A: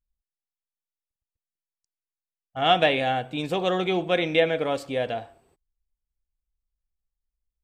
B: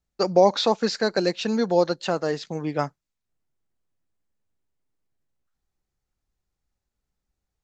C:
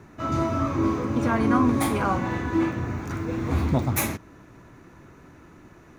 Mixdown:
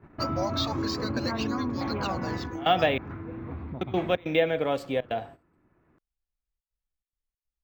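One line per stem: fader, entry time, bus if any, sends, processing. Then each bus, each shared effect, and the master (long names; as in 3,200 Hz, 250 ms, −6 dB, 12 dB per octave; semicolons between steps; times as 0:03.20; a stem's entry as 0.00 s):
−1.0 dB, 0.00 s, muted 0:02.98–0:03.81, no send, high-shelf EQ 3,700 Hz −7 dB; gate pattern "xx.xxx.xx.xxxxx" 141 BPM −24 dB; multiband upward and downward compressor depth 40%
−1.0 dB, 0.00 s, no send, resonant band-pass 4,000 Hz, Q 0.59; through-zero flanger with one copy inverted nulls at 0.29 Hz, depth 3.1 ms
+2.5 dB, 0.00 s, no send, Bessel low-pass filter 2,000 Hz, order 4; downward compressor 6 to 1, threshold −30 dBFS, peak gain reduction 13 dB; automatic ducking −7 dB, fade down 0.20 s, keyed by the first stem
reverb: not used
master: noise gate −45 dBFS, range −14 dB; linearly interpolated sample-rate reduction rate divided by 2×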